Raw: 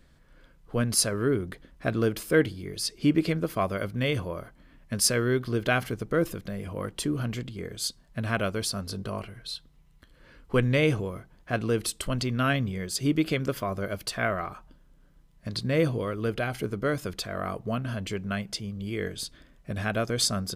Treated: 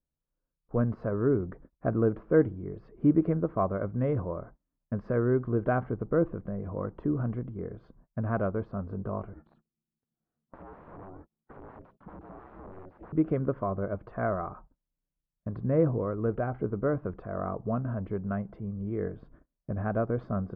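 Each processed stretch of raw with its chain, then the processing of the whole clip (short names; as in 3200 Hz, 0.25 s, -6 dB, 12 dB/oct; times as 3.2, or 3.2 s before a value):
9.33–13.13 wrapped overs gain 27.5 dB + compressor 16:1, threshold -38 dBFS + ring modulator 190 Hz
whole clip: gate -48 dBFS, range -30 dB; LPF 1200 Hz 24 dB/oct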